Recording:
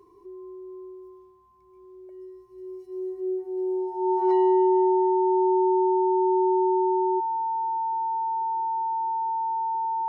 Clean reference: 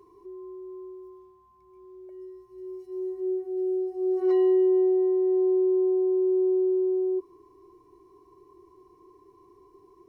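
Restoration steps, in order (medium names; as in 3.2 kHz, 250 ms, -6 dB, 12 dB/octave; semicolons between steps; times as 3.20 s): band-stop 900 Hz, Q 30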